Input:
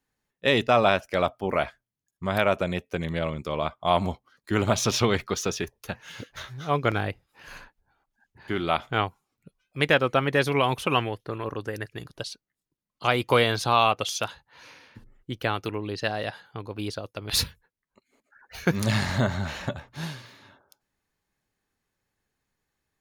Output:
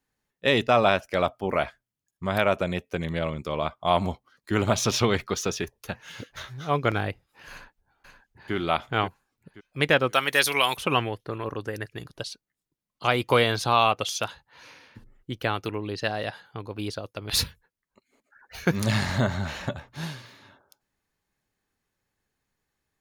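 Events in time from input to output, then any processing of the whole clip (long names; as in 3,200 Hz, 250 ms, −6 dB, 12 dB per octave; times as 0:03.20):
0:07.51–0:08.54: delay throw 530 ms, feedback 30%, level −7.5 dB
0:10.13–0:10.77: spectral tilt +4.5 dB per octave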